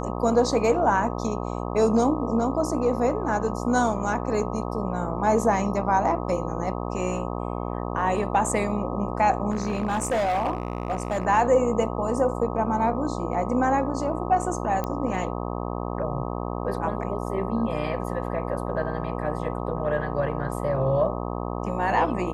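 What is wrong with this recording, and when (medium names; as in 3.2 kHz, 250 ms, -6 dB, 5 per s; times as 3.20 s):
buzz 60 Hz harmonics 21 -30 dBFS
9.50–11.25 s: clipped -20.5 dBFS
14.84 s: pop -15 dBFS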